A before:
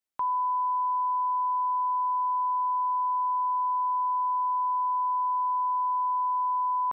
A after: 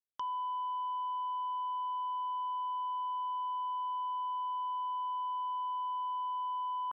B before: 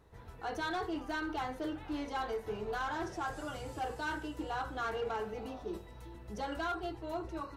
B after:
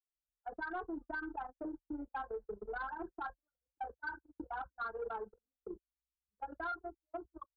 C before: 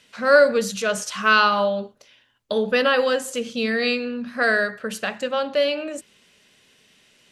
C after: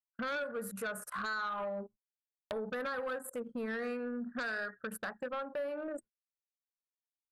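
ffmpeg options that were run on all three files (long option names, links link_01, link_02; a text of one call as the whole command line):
ffmpeg -i in.wav -af "anlmdn=25.1,agate=range=-43dB:threshold=-43dB:ratio=16:detection=peak,highshelf=frequency=2200:width_type=q:width=3:gain=-14,acompressor=threshold=-35dB:ratio=4,aexciter=amount=10.9:drive=7.9:freq=8900,aeval=exprs='0.112*(cos(1*acos(clip(val(0)/0.112,-1,1)))-cos(1*PI/2))+0.0355*(cos(3*acos(clip(val(0)/0.112,-1,1)))-cos(3*PI/2))+0.0398*(cos(5*acos(clip(val(0)/0.112,-1,1)))-cos(5*PI/2))':channel_layout=same,volume=-6dB" out.wav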